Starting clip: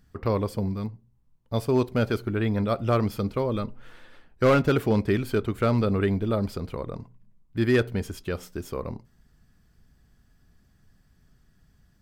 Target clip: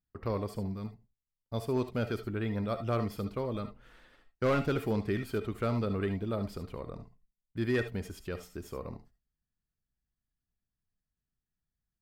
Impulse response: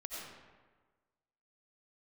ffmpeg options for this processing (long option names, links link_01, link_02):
-filter_complex "[0:a]acontrast=73,agate=range=-22dB:threshold=-42dB:ratio=16:detection=peak[link_01];[1:a]atrim=start_sample=2205,atrim=end_sample=3528[link_02];[link_01][link_02]afir=irnorm=-1:irlink=0,volume=-9dB"